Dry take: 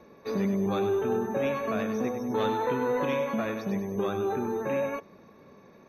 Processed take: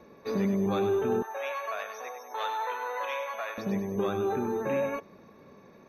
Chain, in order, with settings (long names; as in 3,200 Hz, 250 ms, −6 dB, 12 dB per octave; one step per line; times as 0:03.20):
0:01.22–0:03.58: high-pass filter 660 Hz 24 dB per octave